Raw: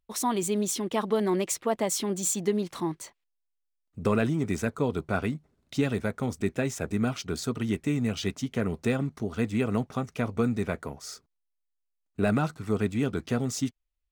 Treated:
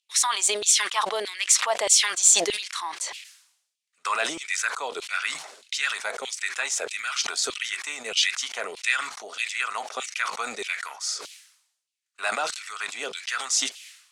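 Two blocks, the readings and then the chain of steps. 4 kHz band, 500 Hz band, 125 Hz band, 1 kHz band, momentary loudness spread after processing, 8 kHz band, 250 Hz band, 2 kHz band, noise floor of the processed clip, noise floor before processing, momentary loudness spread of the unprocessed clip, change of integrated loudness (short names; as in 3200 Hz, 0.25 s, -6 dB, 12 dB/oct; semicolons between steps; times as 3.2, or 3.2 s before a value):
+14.0 dB, -4.5 dB, under -30 dB, +5.0 dB, 13 LU, +12.5 dB, -19.5 dB, +10.5 dB, -79 dBFS, -80 dBFS, 7 LU, +4.5 dB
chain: weighting filter ITU-R 468; LFO high-pass saw down 1.6 Hz 430–3100 Hz; sustainer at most 79 dB/s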